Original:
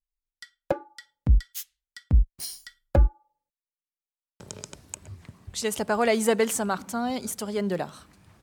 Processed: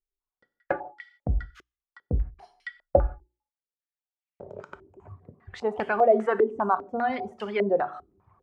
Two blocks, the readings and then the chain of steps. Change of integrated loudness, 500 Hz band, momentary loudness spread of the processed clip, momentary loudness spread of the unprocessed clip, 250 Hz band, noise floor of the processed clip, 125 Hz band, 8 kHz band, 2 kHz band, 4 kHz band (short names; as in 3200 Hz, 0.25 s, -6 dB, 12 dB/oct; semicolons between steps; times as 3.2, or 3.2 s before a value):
0.0 dB, +3.0 dB, 22 LU, 18 LU, -4.0 dB, under -85 dBFS, -6.5 dB, under -30 dB, 0.0 dB, under -10 dB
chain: low shelf 490 Hz -5 dB; notches 60/120/180/240/300/360 Hz; small resonant body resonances 390/730 Hz, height 9 dB, ringing for 0.1 s; in parallel at +3 dB: limiter -20.5 dBFS, peak gain reduction 9 dB; on the sum: reverb removal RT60 1.4 s; non-linear reverb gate 0.2 s falling, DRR 11.5 dB; stepped low-pass 5 Hz 370–2300 Hz; gain -6 dB